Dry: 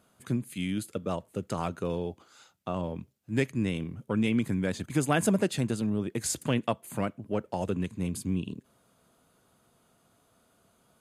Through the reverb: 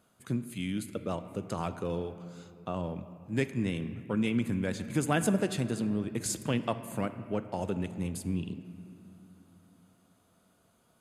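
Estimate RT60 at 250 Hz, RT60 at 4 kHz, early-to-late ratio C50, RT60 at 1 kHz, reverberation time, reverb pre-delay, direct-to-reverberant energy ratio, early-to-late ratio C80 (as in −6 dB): 4.0 s, 1.8 s, 12.0 dB, 2.4 s, 2.7 s, 4 ms, 11.0 dB, 12.5 dB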